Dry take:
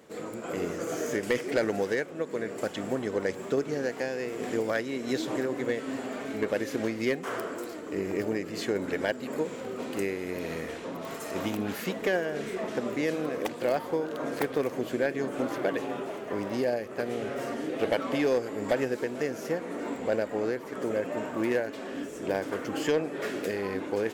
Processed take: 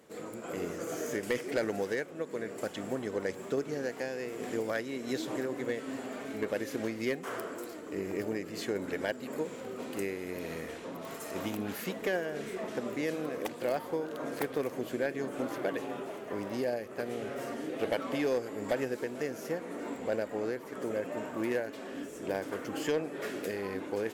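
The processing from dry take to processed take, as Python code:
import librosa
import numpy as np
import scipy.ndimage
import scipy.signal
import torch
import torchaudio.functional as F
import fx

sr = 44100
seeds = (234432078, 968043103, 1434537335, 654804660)

y = fx.peak_eq(x, sr, hz=12000.0, db=5.0, octaves=0.85)
y = y * 10.0 ** (-4.5 / 20.0)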